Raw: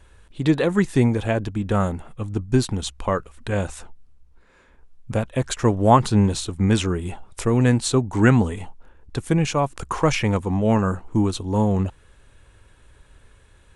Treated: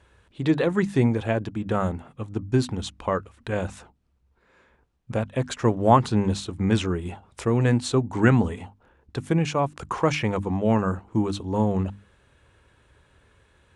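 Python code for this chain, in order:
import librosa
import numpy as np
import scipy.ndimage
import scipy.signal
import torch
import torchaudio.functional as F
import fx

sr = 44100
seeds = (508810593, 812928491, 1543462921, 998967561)

y = scipy.signal.sosfilt(scipy.signal.butter(2, 68.0, 'highpass', fs=sr, output='sos'), x)
y = fx.high_shelf(y, sr, hz=7600.0, db=-12.0)
y = fx.hum_notches(y, sr, base_hz=50, count=6)
y = y * 10.0 ** (-2.0 / 20.0)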